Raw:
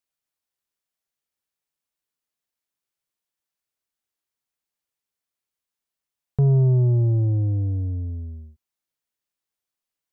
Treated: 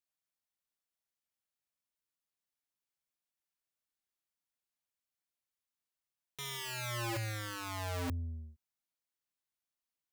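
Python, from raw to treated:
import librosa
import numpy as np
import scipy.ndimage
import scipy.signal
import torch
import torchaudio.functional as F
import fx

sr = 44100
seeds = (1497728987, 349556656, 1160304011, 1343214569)

y = (np.mod(10.0 ** (27.0 / 20.0) * x + 1.0, 2.0) - 1.0) / 10.0 ** (27.0 / 20.0)
y = fx.peak_eq(y, sr, hz=420.0, db=-6.0, octaves=0.3)
y = y * librosa.db_to_amplitude(-6.5)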